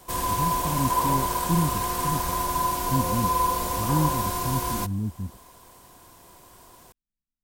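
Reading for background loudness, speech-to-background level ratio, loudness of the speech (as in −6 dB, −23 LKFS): −25.5 LKFS, −5.0 dB, −30.5 LKFS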